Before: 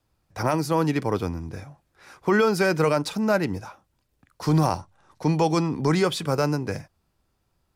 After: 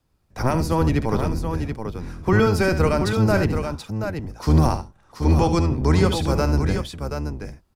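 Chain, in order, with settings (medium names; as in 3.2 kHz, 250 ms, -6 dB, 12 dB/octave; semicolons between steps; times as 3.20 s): octave divider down 1 oct, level +4 dB; multi-tap echo 70/730 ms -10.5/-7 dB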